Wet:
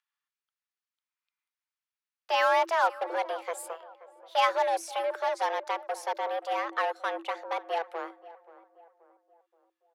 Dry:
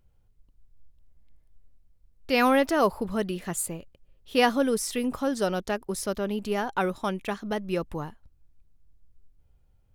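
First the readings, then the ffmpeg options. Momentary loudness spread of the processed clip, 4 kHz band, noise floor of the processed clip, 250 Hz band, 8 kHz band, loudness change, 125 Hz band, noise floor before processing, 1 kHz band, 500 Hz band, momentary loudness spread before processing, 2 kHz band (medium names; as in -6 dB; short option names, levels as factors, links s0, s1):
13 LU, -2.5 dB, under -85 dBFS, -21.0 dB, -10.5 dB, -2.5 dB, under -40 dB, -64 dBFS, +2.5 dB, -3.5 dB, 10 LU, -1.0 dB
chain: -filter_complex "[0:a]acrossover=split=870|5700[s0][s1][s2];[s0]acrusher=bits=4:mix=0:aa=0.5[s3];[s3][s1][s2]amix=inputs=3:normalize=0,aemphasis=mode=reproduction:type=50kf,afreqshift=330,asplit=2[s4][s5];[s5]adelay=529,lowpass=f=1300:p=1,volume=0.141,asplit=2[s6][s7];[s7]adelay=529,lowpass=f=1300:p=1,volume=0.48,asplit=2[s8][s9];[s9]adelay=529,lowpass=f=1300:p=1,volume=0.48,asplit=2[s10][s11];[s11]adelay=529,lowpass=f=1300:p=1,volume=0.48[s12];[s4][s6][s8][s10][s12]amix=inputs=5:normalize=0,volume=0.75"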